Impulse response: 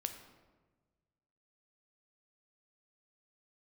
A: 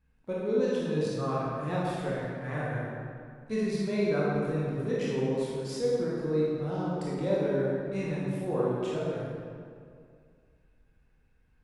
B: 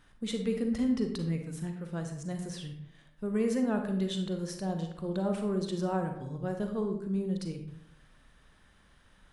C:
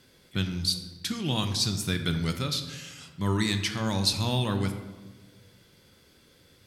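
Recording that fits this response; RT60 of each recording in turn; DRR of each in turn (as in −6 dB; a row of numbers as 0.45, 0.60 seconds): C; 2.2, 0.70, 1.3 seconds; −7.0, 4.5, 6.5 decibels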